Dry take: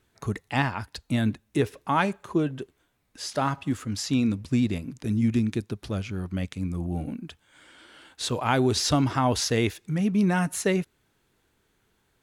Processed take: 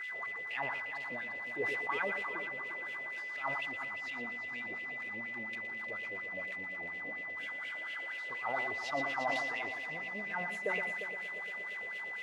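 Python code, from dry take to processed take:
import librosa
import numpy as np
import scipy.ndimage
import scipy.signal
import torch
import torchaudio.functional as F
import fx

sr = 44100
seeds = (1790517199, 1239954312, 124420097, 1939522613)

p1 = x + 0.5 * 10.0 ** (-27.0 / 20.0) * np.sign(x)
p2 = fx.wah_lfo(p1, sr, hz=4.2, low_hz=510.0, high_hz=2800.0, q=5.6)
p3 = p2 + fx.echo_heads(p2, sr, ms=117, heads='first and third', feedback_pct=65, wet_db=-10.5, dry=0)
p4 = p3 + 10.0 ** (-34.0 / 20.0) * np.sin(2.0 * np.pi * 2000.0 * np.arange(len(p3)) / sr)
p5 = fx.sustainer(p4, sr, db_per_s=26.0)
y = F.gain(torch.from_numpy(p5), -5.0).numpy()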